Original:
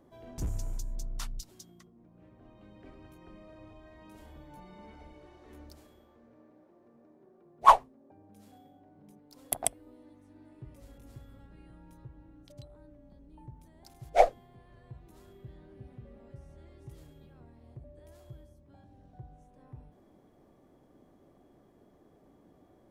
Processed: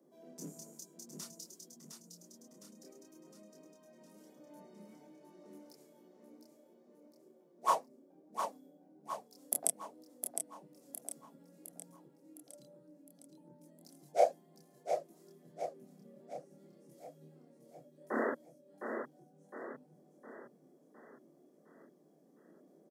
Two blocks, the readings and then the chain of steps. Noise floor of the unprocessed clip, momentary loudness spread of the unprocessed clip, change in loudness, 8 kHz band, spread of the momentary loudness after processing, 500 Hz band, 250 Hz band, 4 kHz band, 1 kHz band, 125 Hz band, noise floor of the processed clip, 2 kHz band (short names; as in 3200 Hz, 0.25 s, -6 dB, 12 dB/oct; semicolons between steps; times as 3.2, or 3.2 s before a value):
-62 dBFS, 20 LU, -11.0 dB, 0.0 dB, 25 LU, -2.5 dB, +1.5 dB, -7.5 dB, -9.5 dB, -15.5 dB, -66 dBFS, -3.5 dB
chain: painted sound noise, 18.1–18.32, 210–2000 Hz -25 dBFS; steep high-pass 150 Hz 96 dB/oct; low shelf 280 Hz -6 dB; feedback echo 0.71 s, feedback 50%, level -6 dB; chorus voices 2, 0.55 Hz, delay 27 ms, depth 3.5 ms; band shelf 1700 Hz -11.5 dB 2.7 oct; gain +2 dB